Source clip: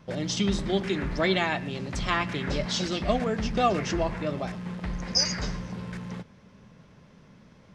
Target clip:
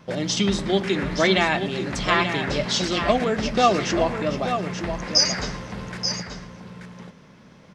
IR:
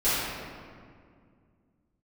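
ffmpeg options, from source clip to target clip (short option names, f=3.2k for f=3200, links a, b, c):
-filter_complex "[0:a]lowshelf=f=110:g=-10,asplit=2[a][b];[b]aecho=0:1:882:0.398[c];[a][c]amix=inputs=2:normalize=0,volume=6dB"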